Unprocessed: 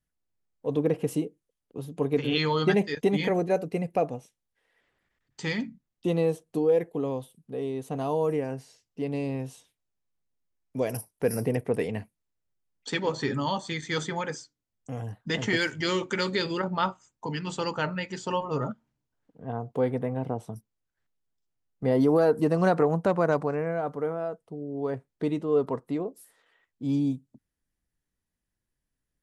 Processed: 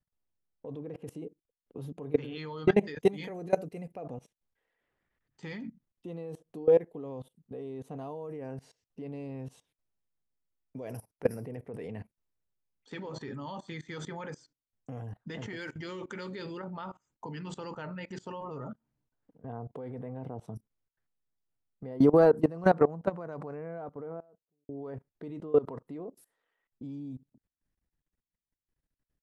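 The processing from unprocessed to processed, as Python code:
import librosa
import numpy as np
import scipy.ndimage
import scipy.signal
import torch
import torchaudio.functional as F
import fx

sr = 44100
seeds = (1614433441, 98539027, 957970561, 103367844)

y = fx.high_shelf(x, sr, hz=4400.0, db=12.0, at=(2.99, 3.92))
y = fx.studio_fade_out(y, sr, start_s=23.41, length_s=1.28)
y = fx.high_shelf(y, sr, hz=3000.0, db=-10.0)
y = fx.level_steps(y, sr, step_db=21)
y = y * librosa.db_to_amplitude(2.5)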